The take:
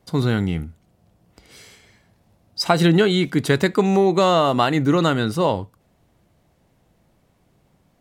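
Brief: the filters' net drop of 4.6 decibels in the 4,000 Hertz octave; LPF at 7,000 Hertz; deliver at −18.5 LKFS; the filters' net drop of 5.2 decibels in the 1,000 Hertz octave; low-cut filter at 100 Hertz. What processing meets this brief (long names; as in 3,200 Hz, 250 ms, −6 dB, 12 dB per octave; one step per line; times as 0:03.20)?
high-pass filter 100 Hz
low-pass filter 7,000 Hz
parametric band 1,000 Hz −7 dB
parametric band 4,000 Hz −5 dB
level +2 dB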